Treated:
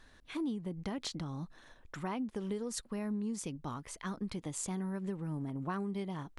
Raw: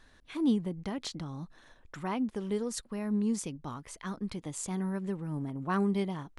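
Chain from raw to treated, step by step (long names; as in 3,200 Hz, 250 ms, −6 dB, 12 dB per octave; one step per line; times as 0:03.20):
downward compressor 12 to 1, threshold −33 dBFS, peak gain reduction 11.5 dB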